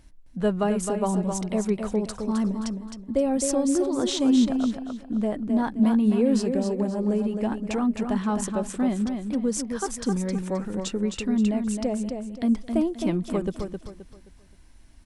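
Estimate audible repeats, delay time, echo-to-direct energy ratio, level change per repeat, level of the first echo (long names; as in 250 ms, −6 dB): 3, 263 ms, −5.5 dB, −10.0 dB, −6.0 dB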